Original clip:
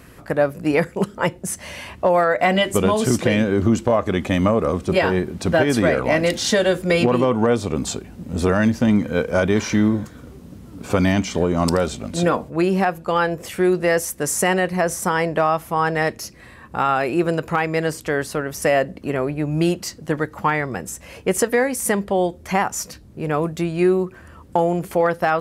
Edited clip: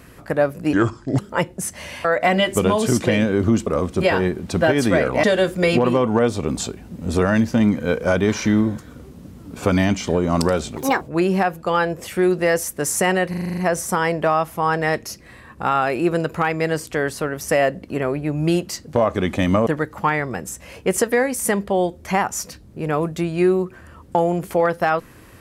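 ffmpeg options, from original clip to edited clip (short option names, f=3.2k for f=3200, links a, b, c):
-filter_complex "[0:a]asplit=17[a][b][c][d][e][f][g][h][i][j][k][l][m][n][o][p][q];[a]atrim=end=0.734[r];[b]atrim=start=0.73:end=1.04,asetpts=PTS-STARTPTS,asetrate=29988,aresample=44100,atrim=end_sample=20104,asetpts=PTS-STARTPTS[s];[c]atrim=start=1.036:end=1.902[t];[d]atrim=start=2.228:end=3.852[u];[e]atrim=start=4.578:end=6.152[v];[f]atrim=start=6.508:end=12.044[w];[g]atrim=start=12.04:end=12.43,asetpts=PTS-STARTPTS,asetrate=69237,aresample=44100[x];[h]atrim=start=12.426:end=14.752[y];[i]atrim=start=14.708:end=14.752[z];[j]atrim=start=14.708:end=14.752[aa];[k]atrim=start=14.708:end=14.752[ab];[l]atrim=start=14.708:end=14.752[ac];[m]atrim=start=14.708:end=14.752[ad];[n]atrim=start=14.708:end=14.752[ae];[o]atrim=start=14.708:end=20.072[af];[p]atrim=start=3.848:end=4.582[ag];[q]atrim=start=20.068[ah];[r][s]acrossfade=d=0.004:c1=hsin:c2=hsin[ai];[ai][t]acrossfade=d=0.004:c1=hsin:c2=hsin[aj];[aj][u]acrossfade=d=0.004:c1=hsin:c2=hsin[ak];[ak][v]acrossfade=d=0.004:c1=hsin:c2=hsin[al];[al][w]acrossfade=d=0.004:c1=hsin:c2=hsin[am];[am][x]acrossfade=d=0.004:c1=hsin:c2=hsin[an];[an][y]acrossfade=d=0.004:c1=hsin:c2=hsin[ao];[ao][z]acrossfade=d=0.004:c1=hsin:c2=hsin[ap];[ap][aa]acrossfade=d=0.004:c1=hsin:c2=hsin[aq];[aq][ab]acrossfade=d=0.004:c1=hsin:c2=hsin[ar];[ar][ac]acrossfade=d=0.004:c1=hsin:c2=hsin[as];[as][ad]acrossfade=d=0.004:c1=hsin:c2=hsin[at];[at][ae]acrossfade=d=0.004:c1=hsin:c2=hsin[au];[au][af]acrossfade=d=0.004:c1=hsin:c2=hsin[av];[av][ag]acrossfade=d=0.004:c1=hsin:c2=hsin[aw];[aw][ah]acrossfade=d=0.004:c1=hsin:c2=hsin"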